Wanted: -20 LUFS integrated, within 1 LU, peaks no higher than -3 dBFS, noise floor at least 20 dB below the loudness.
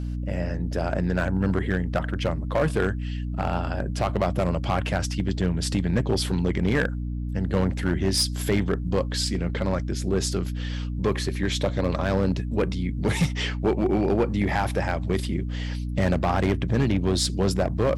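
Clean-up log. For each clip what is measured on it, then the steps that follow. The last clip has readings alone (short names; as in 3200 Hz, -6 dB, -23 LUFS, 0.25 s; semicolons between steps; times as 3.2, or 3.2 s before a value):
clipped 1.7%; flat tops at -15.5 dBFS; hum 60 Hz; harmonics up to 300 Hz; hum level -27 dBFS; loudness -25.5 LUFS; peak -15.5 dBFS; loudness target -20.0 LUFS
-> clip repair -15.5 dBFS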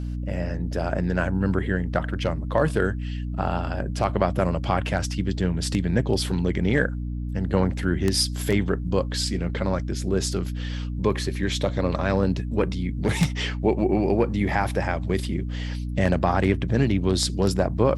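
clipped 0.0%; hum 60 Hz; harmonics up to 300 Hz; hum level -27 dBFS
-> notches 60/120/180/240/300 Hz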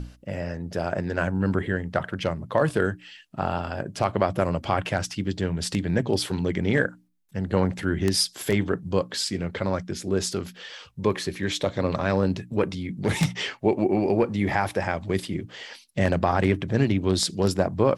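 hum none; loudness -26.0 LUFS; peak -6.5 dBFS; loudness target -20.0 LUFS
-> gain +6 dB; limiter -3 dBFS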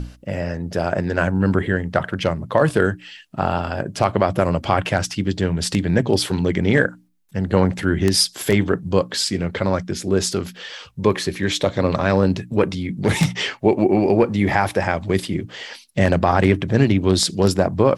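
loudness -20.0 LUFS; peak -3.0 dBFS; noise floor -47 dBFS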